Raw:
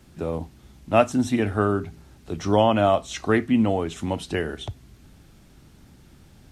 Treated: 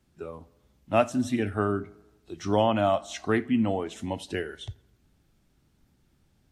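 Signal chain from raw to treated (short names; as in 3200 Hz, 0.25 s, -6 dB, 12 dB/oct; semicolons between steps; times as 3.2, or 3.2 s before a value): spectral noise reduction 11 dB; on a send: tape echo 87 ms, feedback 62%, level -22 dB, low-pass 2400 Hz; on the sum: gain -4.5 dB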